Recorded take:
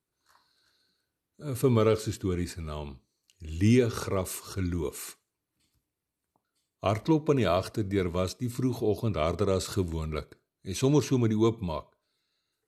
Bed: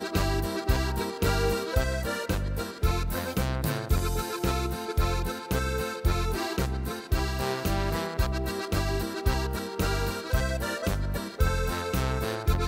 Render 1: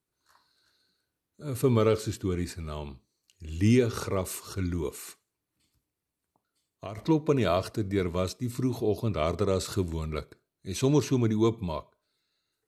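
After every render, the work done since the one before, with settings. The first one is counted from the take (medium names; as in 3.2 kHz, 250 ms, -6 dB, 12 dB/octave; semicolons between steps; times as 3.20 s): 4.94–6.98 s: compression 2.5:1, threshold -39 dBFS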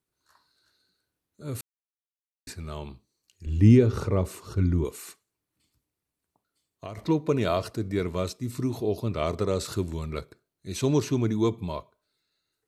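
1.61–2.47 s: mute; 3.46–4.85 s: tilt EQ -2.5 dB/octave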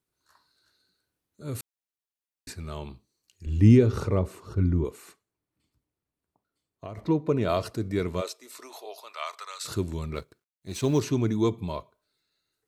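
4.19–7.49 s: treble shelf 2.4 kHz -9.5 dB; 8.20–9.64 s: high-pass 400 Hz -> 1.2 kHz 24 dB/octave; 10.14–11.00 s: companding laws mixed up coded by A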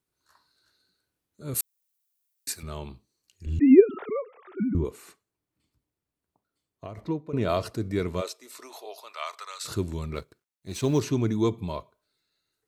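1.54–2.63 s: RIAA curve recording; 3.59–4.75 s: formants replaced by sine waves; 6.86–7.33 s: fade out, to -15 dB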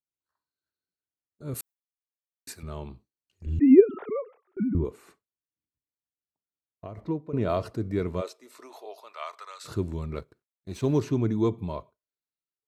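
gate with hold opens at -39 dBFS; treble shelf 2.3 kHz -10.5 dB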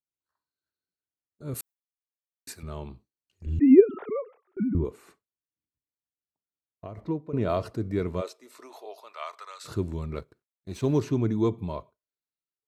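no audible change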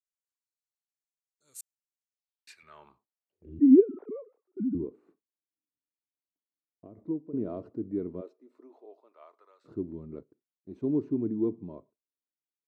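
band-pass sweep 7.2 kHz -> 290 Hz, 2.01–3.62 s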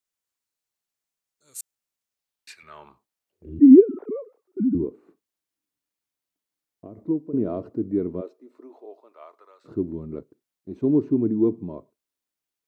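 trim +8 dB; peak limiter -3 dBFS, peak gain reduction 2 dB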